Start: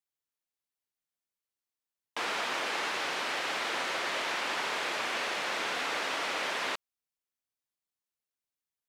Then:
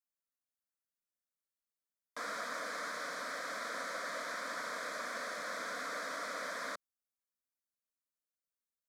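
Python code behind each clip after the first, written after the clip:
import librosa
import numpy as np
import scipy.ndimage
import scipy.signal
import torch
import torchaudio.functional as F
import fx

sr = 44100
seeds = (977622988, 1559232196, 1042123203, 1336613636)

y = fx.fixed_phaser(x, sr, hz=560.0, stages=8)
y = y * 10.0 ** (-4.0 / 20.0)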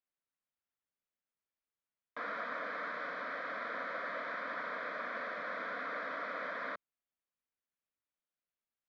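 y = scipy.signal.sosfilt(scipy.signal.butter(4, 3100.0, 'lowpass', fs=sr, output='sos'), x)
y = y * 10.0 ** (1.0 / 20.0)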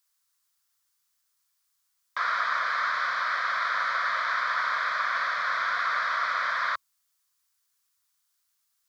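y = fx.curve_eq(x, sr, hz=(120.0, 300.0, 1100.0, 2500.0, 4800.0), db=(0, -27, 7, 3, 14))
y = y * 10.0 ** (8.0 / 20.0)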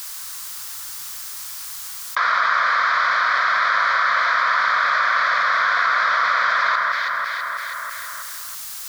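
y = fx.echo_alternate(x, sr, ms=163, hz=1900.0, feedback_pct=56, wet_db=-5.0)
y = fx.env_flatten(y, sr, amount_pct=70)
y = y * 10.0 ** (6.5 / 20.0)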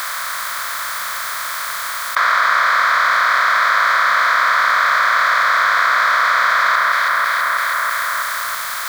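y = fx.bin_compress(x, sr, power=0.4)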